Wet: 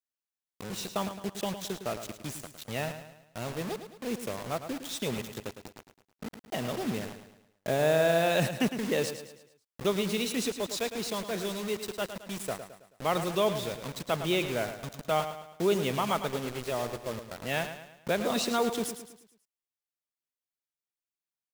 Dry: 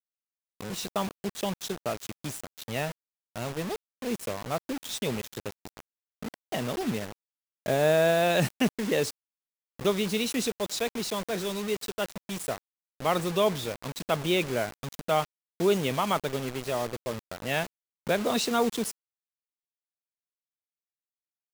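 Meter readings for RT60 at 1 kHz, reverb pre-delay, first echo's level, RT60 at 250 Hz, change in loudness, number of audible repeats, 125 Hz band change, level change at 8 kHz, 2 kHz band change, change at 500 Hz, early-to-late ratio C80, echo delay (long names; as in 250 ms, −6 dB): no reverb audible, no reverb audible, −10.0 dB, no reverb audible, −2.0 dB, 4, −2.0 dB, −2.0 dB, −2.0 dB, −2.0 dB, no reverb audible, 108 ms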